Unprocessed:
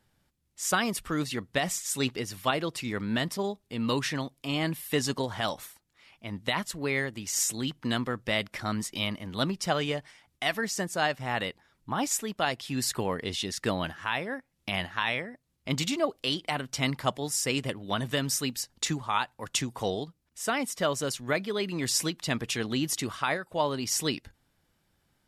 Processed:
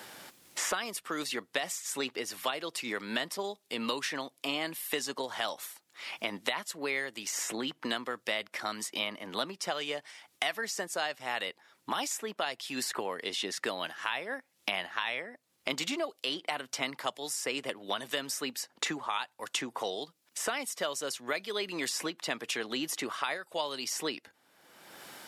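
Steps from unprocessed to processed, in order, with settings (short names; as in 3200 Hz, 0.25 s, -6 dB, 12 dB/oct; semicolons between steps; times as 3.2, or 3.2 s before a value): HPF 400 Hz 12 dB/oct; three-band squash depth 100%; gain -3.5 dB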